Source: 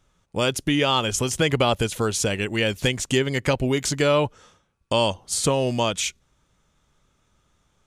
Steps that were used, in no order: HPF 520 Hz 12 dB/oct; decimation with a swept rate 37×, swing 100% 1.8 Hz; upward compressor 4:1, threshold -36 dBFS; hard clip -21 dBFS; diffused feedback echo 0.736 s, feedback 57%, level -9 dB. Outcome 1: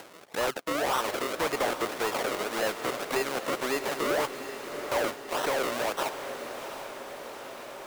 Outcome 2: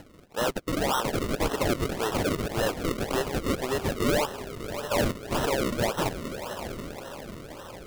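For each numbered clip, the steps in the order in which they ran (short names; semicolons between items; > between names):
decimation with a swept rate > HPF > hard clip > diffused feedback echo > upward compressor; upward compressor > HPF > hard clip > diffused feedback echo > decimation with a swept rate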